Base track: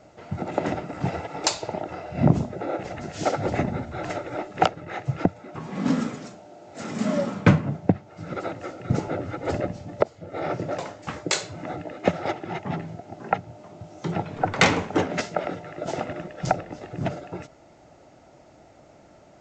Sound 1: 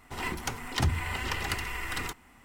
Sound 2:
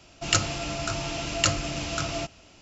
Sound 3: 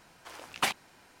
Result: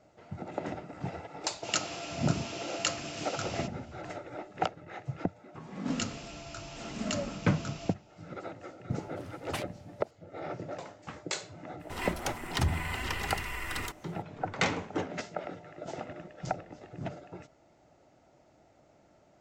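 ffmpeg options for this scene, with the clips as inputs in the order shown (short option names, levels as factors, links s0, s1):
-filter_complex "[2:a]asplit=2[s0][s1];[0:a]volume=0.299[s2];[s0]highpass=250,atrim=end=2.61,asetpts=PTS-STARTPTS,volume=0.422,afade=t=in:d=0.004:c=hsin,afade=t=out:st=2.606:d=0.004:c=hsin,adelay=1410[s3];[s1]atrim=end=2.61,asetpts=PTS-STARTPTS,volume=0.211,afade=t=in:d=0.004:c=hsin,afade=t=out:st=2.606:d=0.004:c=hsin,adelay=5670[s4];[3:a]atrim=end=1.2,asetpts=PTS-STARTPTS,volume=0.316,afade=t=in:d=0.004:c=hsin,afade=t=out:st=1.196:d=0.004:c=hsin,adelay=8910[s5];[1:a]atrim=end=2.44,asetpts=PTS-STARTPTS,volume=0.794,afade=t=in:d=0.02,afade=t=out:st=2.42:d=0.02,adelay=11790[s6];[s2][s3][s4][s5][s6]amix=inputs=5:normalize=0"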